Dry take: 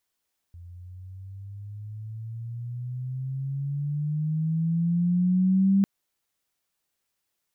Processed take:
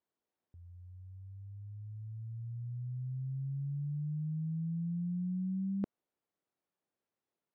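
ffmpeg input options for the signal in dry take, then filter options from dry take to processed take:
-f lavfi -i "aevalsrc='pow(10,(-16.5+24.5*(t/5.3-1))/20)*sin(2*PI*85.7*5.3/(14.5*log(2)/12)*(exp(14.5*log(2)/12*t/5.3)-1))':d=5.3:s=44100"
-af "bandpass=f=350:t=q:w=0.67:csg=0,areverse,acompressor=threshold=0.0178:ratio=6,areverse"

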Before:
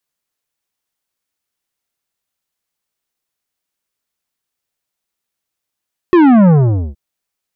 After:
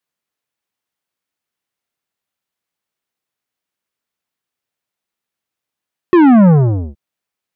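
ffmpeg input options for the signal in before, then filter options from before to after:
-f lavfi -i "aevalsrc='0.501*clip((0.82-t)/0.47,0,1)*tanh(3.98*sin(2*PI*370*0.82/log(65/370)*(exp(log(65/370)*t/0.82)-1)))/tanh(3.98)':d=0.82:s=44100"
-af "highpass=f=170:p=1,bass=f=250:g=4,treble=f=4000:g=-6"

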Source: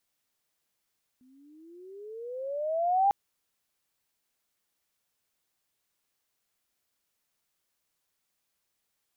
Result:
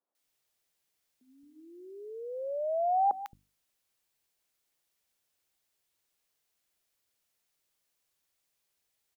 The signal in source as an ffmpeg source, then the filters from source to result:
-f lavfi -i "aevalsrc='pow(10,(-19+38*(t/1.9-1))/20)*sin(2*PI*249*1.9/(20.5*log(2)/12)*(exp(20.5*log(2)/12*t/1.9)-1))':d=1.9:s=44100"
-filter_complex "[0:a]bandreject=f=50:t=h:w=6,bandreject=f=100:t=h:w=6,bandreject=f=150:t=h:w=6,bandreject=f=200:t=h:w=6,bandreject=f=250:t=h:w=6,bandreject=f=300:t=h:w=6,acrossover=split=210|1200[s0][s1][s2];[s2]adelay=150[s3];[s0]adelay=220[s4];[s4][s1][s3]amix=inputs=3:normalize=0"

